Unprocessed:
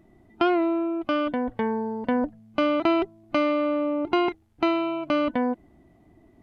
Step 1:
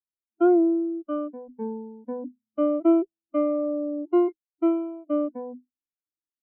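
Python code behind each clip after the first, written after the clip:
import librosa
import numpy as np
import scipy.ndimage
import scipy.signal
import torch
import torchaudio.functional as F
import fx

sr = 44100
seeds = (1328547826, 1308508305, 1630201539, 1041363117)

y = fx.hum_notches(x, sr, base_hz=50, count=5)
y = fx.spectral_expand(y, sr, expansion=2.5)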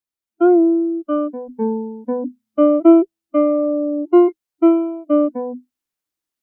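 y = fx.rider(x, sr, range_db=5, speed_s=2.0)
y = F.gain(torch.from_numpy(y), 8.0).numpy()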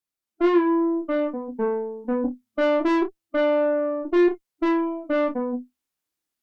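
y = fx.tube_stage(x, sr, drive_db=18.0, bias=0.3)
y = fx.room_early_taps(y, sr, ms=(29, 57), db=(-4.0, -14.5))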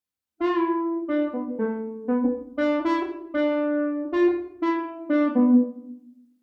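y = fx.filter_sweep_highpass(x, sr, from_hz=72.0, to_hz=450.0, start_s=4.02, end_s=6.41, q=3.9)
y = fx.room_shoebox(y, sr, seeds[0], volume_m3=2200.0, walls='furnished', distance_m=2.0)
y = F.gain(torch.from_numpy(y), -3.0).numpy()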